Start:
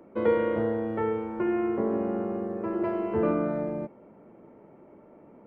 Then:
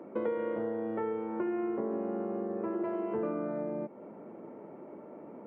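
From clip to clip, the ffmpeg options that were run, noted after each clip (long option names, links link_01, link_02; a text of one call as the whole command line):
ffmpeg -i in.wav -af "acompressor=threshold=-38dB:ratio=4,highpass=190,highshelf=frequency=2800:gain=-10.5,volume=6dB" out.wav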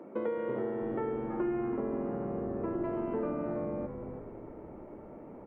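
ffmpeg -i in.wav -filter_complex "[0:a]asplit=7[link_01][link_02][link_03][link_04][link_05][link_06][link_07];[link_02]adelay=329,afreqshift=-92,volume=-7.5dB[link_08];[link_03]adelay=658,afreqshift=-184,volume=-13.7dB[link_09];[link_04]adelay=987,afreqshift=-276,volume=-19.9dB[link_10];[link_05]adelay=1316,afreqshift=-368,volume=-26.1dB[link_11];[link_06]adelay=1645,afreqshift=-460,volume=-32.3dB[link_12];[link_07]adelay=1974,afreqshift=-552,volume=-38.5dB[link_13];[link_01][link_08][link_09][link_10][link_11][link_12][link_13]amix=inputs=7:normalize=0,volume=-1dB" out.wav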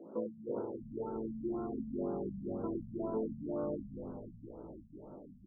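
ffmpeg -i in.wav -af "aecho=1:1:585:0.15,flanger=delay=18:depth=2.3:speed=0.67,afftfilt=real='re*lt(b*sr/1024,230*pow(1600/230,0.5+0.5*sin(2*PI*2*pts/sr)))':imag='im*lt(b*sr/1024,230*pow(1600/230,0.5+0.5*sin(2*PI*2*pts/sr)))':win_size=1024:overlap=0.75" out.wav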